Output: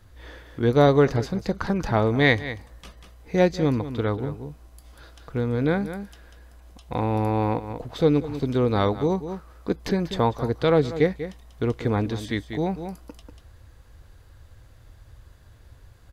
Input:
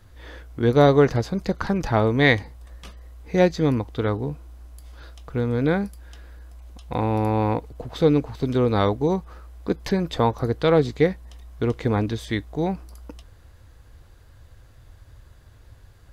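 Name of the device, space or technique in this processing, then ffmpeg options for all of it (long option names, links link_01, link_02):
ducked delay: -filter_complex "[0:a]asplit=3[link_01][link_02][link_03];[link_02]adelay=191,volume=-6.5dB[link_04];[link_03]apad=whole_len=719572[link_05];[link_04][link_05]sidechaincompress=threshold=-31dB:ratio=4:attack=23:release=226[link_06];[link_01][link_06]amix=inputs=2:normalize=0,volume=-1.5dB"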